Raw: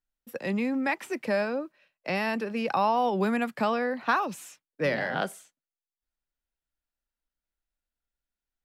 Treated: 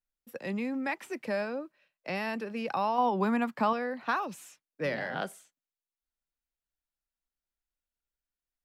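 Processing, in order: 2.98–3.73 fifteen-band EQ 250 Hz +5 dB, 1000 Hz +9 dB, 10000 Hz -4 dB; gain -5 dB

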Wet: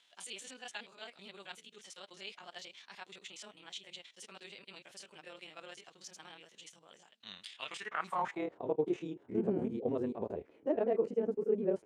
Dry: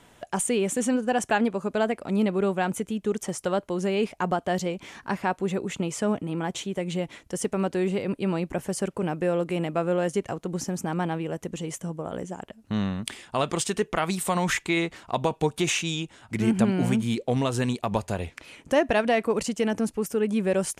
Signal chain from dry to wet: stepped spectrum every 50 ms; band-pass sweep 3800 Hz -> 410 Hz, 13.15–15.12; granular stretch 0.57×, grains 53 ms

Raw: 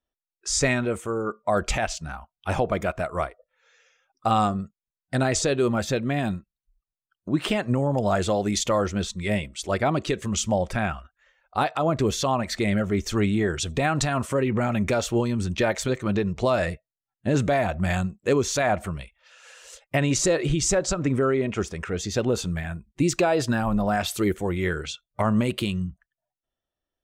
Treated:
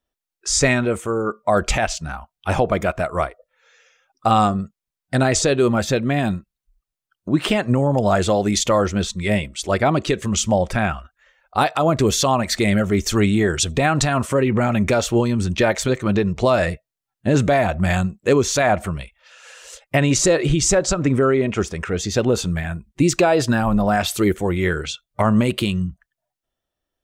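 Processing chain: 11.58–13.65 high shelf 5000 Hz +6.5 dB; gain +5.5 dB

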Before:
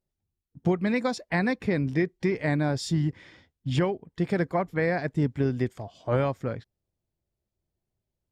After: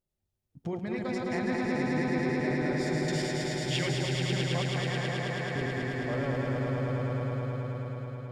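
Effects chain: regenerating reverse delay 0.104 s, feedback 65%, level -2 dB; 3.08–3.89 resonant high shelf 1500 Hz +13.5 dB, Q 1.5; 4.73–5.56 Bessel high-pass 1100 Hz, order 2; compressor 1.5:1, threshold -42 dBFS, peak gain reduction 9.5 dB; swelling echo 0.108 s, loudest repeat 5, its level -5.5 dB; gain -3.5 dB

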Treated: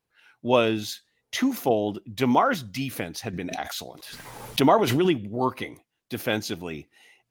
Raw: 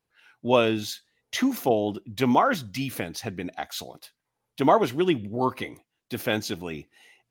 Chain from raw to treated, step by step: 3.33–5.17 backwards sustainer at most 41 dB/s

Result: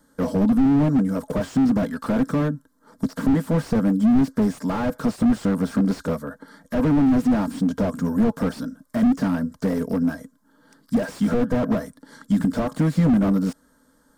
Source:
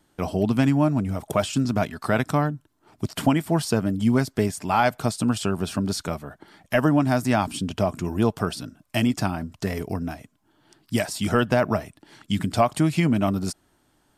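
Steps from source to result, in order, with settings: fixed phaser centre 520 Hz, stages 8; small resonant body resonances 270/490/850/1600 Hz, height 9 dB, ringing for 75 ms; slew limiter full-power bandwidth 25 Hz; gain +5.5 dB

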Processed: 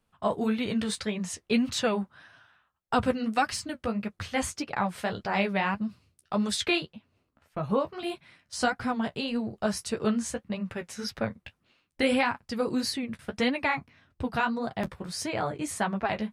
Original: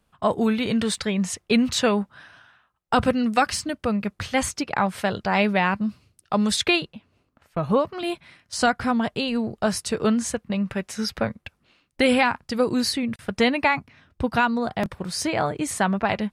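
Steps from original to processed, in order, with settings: flange 1.7 Hz, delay 7.1 ms, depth 8.1 ms, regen -28%; gain -2.5 dB

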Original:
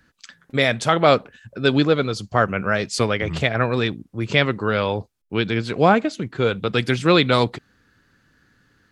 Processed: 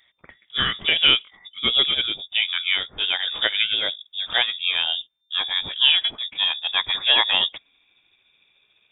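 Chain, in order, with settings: gliding pitch shift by -6 st starting unshifted; inverted band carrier 3600 Hz; gain -1.5 dB

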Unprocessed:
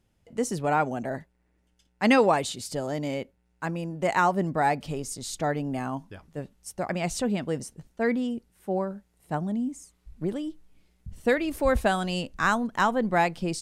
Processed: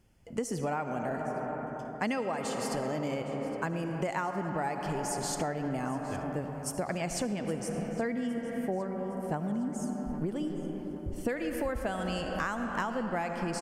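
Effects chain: notch 3800 Hz, Q 5.4; on a send at -7 dB: reverb RT60 3.8 s, pre-delay 30 ms; on the sum: compressor 12:1, threshold -33 dBFS, peak gain reduction 19 dB; feedback echo 0.813 s, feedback 50%, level -18.5 dB; gain +4 dB

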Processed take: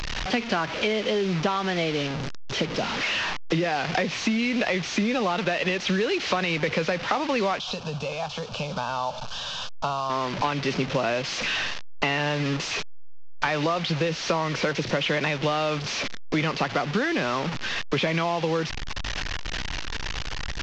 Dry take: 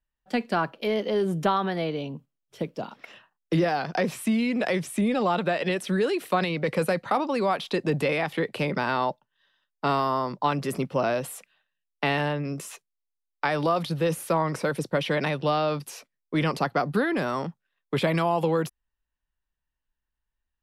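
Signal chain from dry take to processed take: delta modulation 32 kbps, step -30.5 dBFS; dynamic EQ 2600 Hz, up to +7 dB, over -45 dBFS, Q 1.1; compressor, threshold -28 dBFS, peak gain reduction 10.5 dB; 7.59–10.1 fixed phaser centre 820 Hz, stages 4; gain +6.5 dB

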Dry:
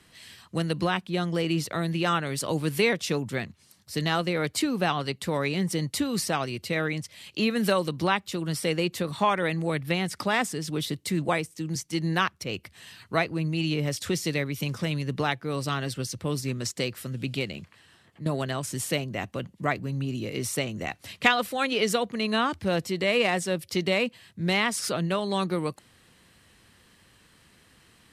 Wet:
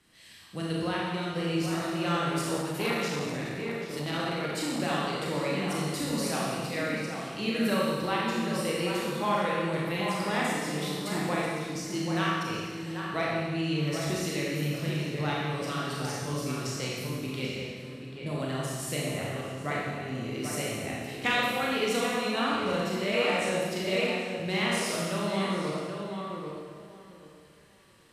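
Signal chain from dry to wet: tape echo 0.786 s, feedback 23%, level -5 dB, low-pass 2000 Hz; Schroeder reverb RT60 1.6 s, combs from 27 ms, DRR -5 dB; 2.61–4.8 core saturation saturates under 990 Hz; gain -9 dB

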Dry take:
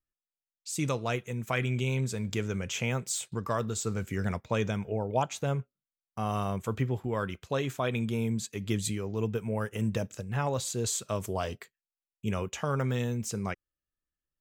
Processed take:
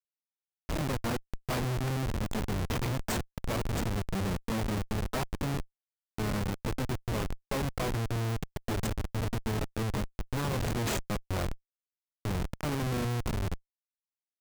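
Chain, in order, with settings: diffused feedback echo 0.803 s, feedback 60%, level -16 dB; harmoniser +12 st -2 dB; Schmitt trigger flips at -26 dBFS

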